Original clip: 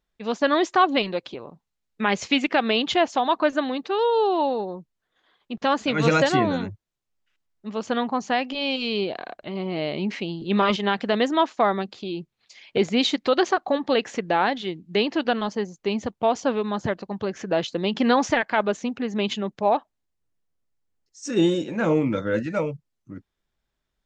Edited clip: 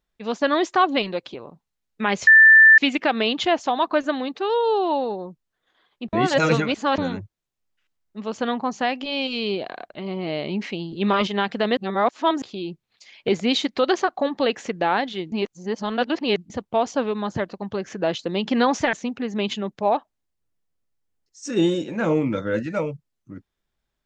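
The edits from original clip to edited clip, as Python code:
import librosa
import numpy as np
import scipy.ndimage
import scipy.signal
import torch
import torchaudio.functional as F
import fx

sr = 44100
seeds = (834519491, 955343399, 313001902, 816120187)

y = fx.edit(x, sr, fx.insert_tone(at_s=2.27, length_s=0.51, hz=1770.0, db=-7.0),
    fx.reverse_span(start_s=5.62, length_s=0.85),
    fx.reverse_span(start_s=11.26, length_s=0.65),
    fx.reverse_span(start_s=14.81, length_s=1.18),
    fx.cut(start_s=18.42, length_s=0.31), tone=tone)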